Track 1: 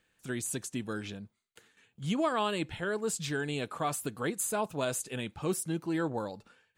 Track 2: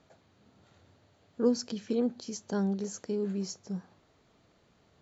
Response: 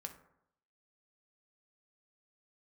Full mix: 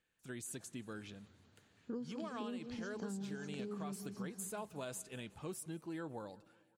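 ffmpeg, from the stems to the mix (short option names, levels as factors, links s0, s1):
-filter_complex "[0:a]volume=0.299,asplit=2[s0][s1];[s1]volume=0.0631[s2];[1:a]acrossover=split=3700[s3][s4];[s4]acompressor=threshold=0.00126:ratio=4:attack=1:release=60[s5];[s3][s5]amix=inputs=2:normalize=0,equalizer=f=600:w=1.2:g=-7.5,adelay=500,volume=0.596,asplit=2[s6][s7];[s7]volume=0.299[s8];[s2][s8]amix=inputs=2:normalize=0,aecho=0:1:183|366|549|732|915|1098|1281|1464|1647:1|0.59|0.348|0.205|0.121|0.0715|0.0422|0.0249|0.0147[s9];[s0][s6][s9]amix=inputs=3:normalize=0,acompressor=threshold=0.0112:ratio=12"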